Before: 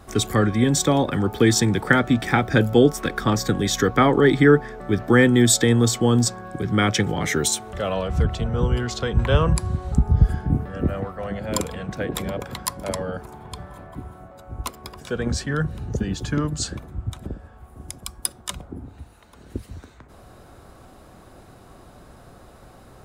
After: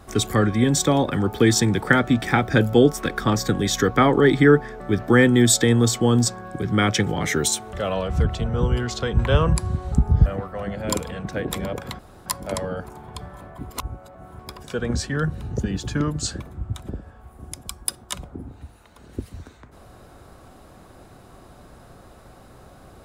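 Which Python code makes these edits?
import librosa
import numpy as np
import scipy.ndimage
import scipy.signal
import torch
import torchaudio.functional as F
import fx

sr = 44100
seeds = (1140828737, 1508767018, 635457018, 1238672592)

y = fx.edit(x, sr, fx.cut(start_s=10.26, length_s=0.64),
    fx.insert_room_tone(at_s=12.63, length_s=0.27),
    fx.reverse_span(start_s=14.07, length_s=0.69), tone=tone)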